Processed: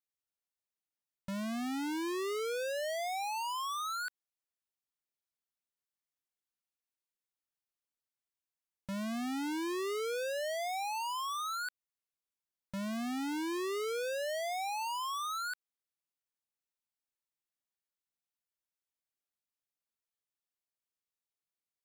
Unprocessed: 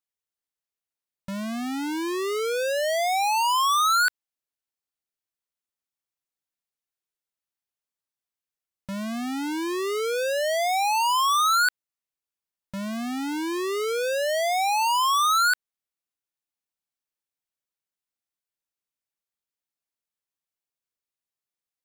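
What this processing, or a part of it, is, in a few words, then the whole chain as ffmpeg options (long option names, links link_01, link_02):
de-esser from a sidechain: -filter_complex "[0:a]asplit=2[link_01][link_02];[link_02]highpass=5500,apad=whole_len=963242[link_03];[link_01][link_03]sidechaincompress=threshold=-37dB:ratio=8:attack=4.8:release=99,volume=-6dB"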